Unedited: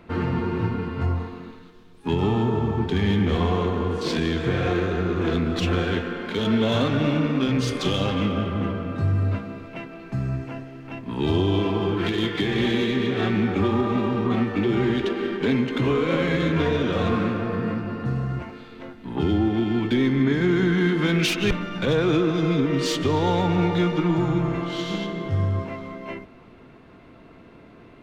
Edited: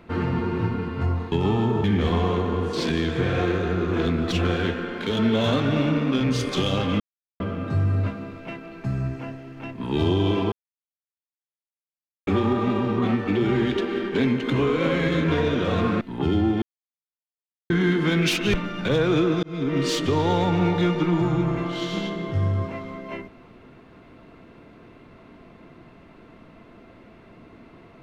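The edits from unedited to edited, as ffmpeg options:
-filter_complex "[0:a]asplit=11[a][b][c][d][e][f][g][h][i][j][k];[a]atrim=end=1.322[l];[b]atrim=start=2.098:end=2.622[m];[c]atrim=start=3.118:end=8.28,asetpts=PTS-STARTPTS,afade=t=out:st=5.158:d=0.004:c=hsin[n];[d]atrim=start=8.28:end=8.68,asetpts=PTS-STARTPTS,volume=0[o];[e]atrim=start=8.68:end=11.8,asetpts=PTS-STARTPTS,afade=t=in:d=0.004:c=hsin,afade=t=out:st=3.116:d=0.004:c=hsin[p];[f]atrim=start=11.8:end=13.55,asetpts=PTS-STARTPTS,volume=0[q];[g]atrim=start=13.55:end=17.292,asetpts=PTS-STARTPTS,afade=t=in:d=0.004:c=hsin[r];[h]atrim=start=18.978:end=19.59,asetpts=PTS-STARTPTS,afade=t=out:st=0.608:d=0.004:c=hsin[s];[i]atrim=start=19.59:end=20.67,asetpts=PTS-STARTPTS,volume=0[t];[j]atrim=start=20.67:end=22.4,asetpts=PTS-STARTPTS,afade=t=in:d=0.004:c=hsin,afade=t=out:st=1.726:d=0.004:c=hsin[u];[k]atrim=start=22.4,asetpts=PTS-STARTPTS,afade=t=in:d=0.33[v];[l][m]acrossfade=d=0.004:c1=hsin:c2=hsin[w];[n][o][p][q][r]concat=n=5:v=0:a=1[x];[w][x]acrossfade=d=0.004:c1=hsin:c2=hsin[y];[s][t][u][v]concat=n=4:v=0:a=1[z];[y][z]acrossfade=d=0.004:c1=hsin:c2=hsin"

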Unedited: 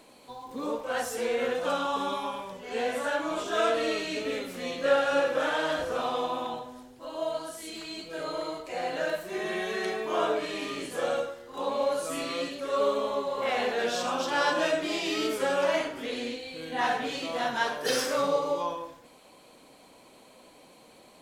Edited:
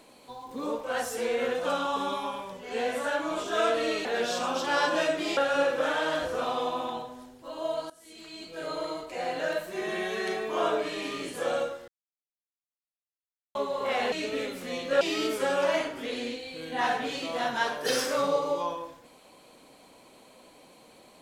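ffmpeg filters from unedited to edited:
-filter_complex "[0:a]asplit=8[a][b][c][d][e][f][g][h];[a]atrim=end=4.052[i];[b]atrim=start=13.688:end=15.012[j];[c]atrim=start=4.938:end=7.47,asetpts=PTS-STARTPTS,afade=t=out:st=2.528:d=0.004:c=hsin:silence=0.105925[k];[d]atrim=start=7.47:end=11.45,asetpts=PTS-STARTPTS,afade=t=in:d=0.8:silence=0.105925,afade=t=out:st=3.976:d=0.004:c=hsin[l];[e]atrim=start=11.45:end=13.12,asetpts=PTS-STARTPTS,volume=0[m];[f]atrim=start=13.12:end=13.692,asetpts=PTS-STARTPTS,afade=t=in:d=0.004:c=hsin[n];[g]atrim=start=4.048:end=4.942[o];[h]atrim=start=15.008[p];[i][j]acrossfade=d=0.004:c1=hsin:c2=hsin[q];[k][l][m][n]concat=n=4:v=0:a=1[r];[q][r]acrossfade=d=0.004:c1=hsin:c2=hsin[s];[s][o]acrossfade=d=0.004:c1=hsin:c2=hsin[t];[t][p]acrossfade=d=0.004:c1=hsin:c2=hsin"

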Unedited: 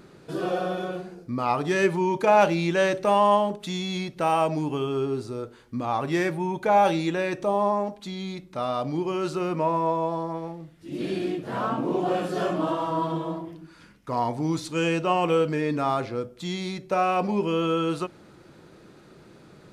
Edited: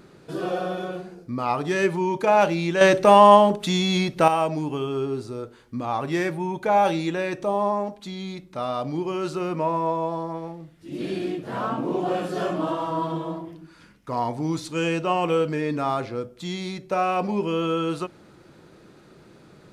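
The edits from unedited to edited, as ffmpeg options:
-filter_complex "[0:a]asplit=3[a][b][c];[a]atrim=end=2.812[d];[b]atrim=start=2.808:end=4.282,asetpts=PTS-STARTPTS,volume=7.5dB[e];[c]atrim=start=4.278[f];[d][e]acrossfade=d=0.004:c1=hsin:c2=hsin[g];[g][f]acrossfade=d=0.004:c1=hsin:c2=hsin"

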